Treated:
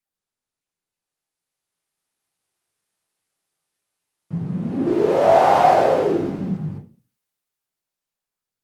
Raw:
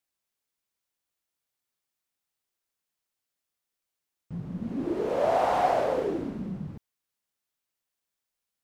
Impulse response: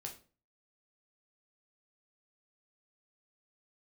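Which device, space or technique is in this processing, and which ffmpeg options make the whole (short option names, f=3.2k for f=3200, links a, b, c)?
far-field microphone of a smart speaker: -filter_complex "[1:a]atrim=start_sample=2205[a];[0:a][a]afir=irnorm=-1:irlink=0,highpass=f=100:w=0.5412,highpass=f=100:w=1.3066,dynaudnorm=f=320:g=11:m=14.5dB" -ar 48000 -c:a libopus -b:a 32k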